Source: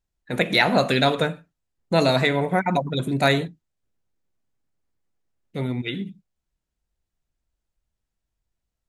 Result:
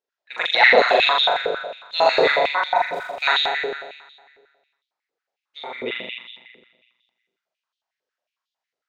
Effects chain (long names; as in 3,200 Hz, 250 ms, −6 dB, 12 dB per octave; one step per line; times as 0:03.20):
low-pass filter 6,000 Hz 24 dB per octave
0:02.78–0:03.22: tube saturation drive 40 dB, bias 0.65
on a send: flutter between parallel walls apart 7.1 metres, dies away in 1.5 s
on the sum: high-pass on a step sequencer 11 Hz 450–3,400 Hz
level −3.5 dB